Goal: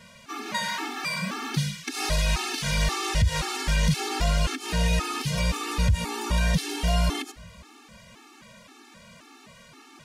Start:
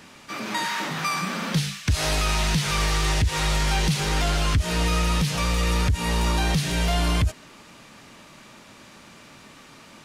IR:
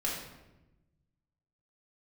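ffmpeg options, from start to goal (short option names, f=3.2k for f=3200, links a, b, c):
-filter_complex "[0:a]asplit=2[a][b];[1:a]atrim=start_sample=2205[c];[b][c]afir=irnorm=-1:irlink=0,volume=-26dB[d];[a][d]amix=inputs=2:normalize=0,afftfilt=real='re*gt(sin(2*PI*1.9*pts/sr)*(1-2*mod(floor(b*sr/1024/230),2)),0)':imag='im*gt(sin(2*PI*1.9*pts/sr)*(1-2*mod(floor(b*sr/1024/230),2)),0)':win_size=1024:overlap=0.75"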